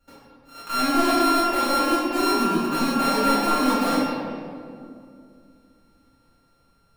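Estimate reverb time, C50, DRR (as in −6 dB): 2.4 s, −2.0 dB, −11.5 dB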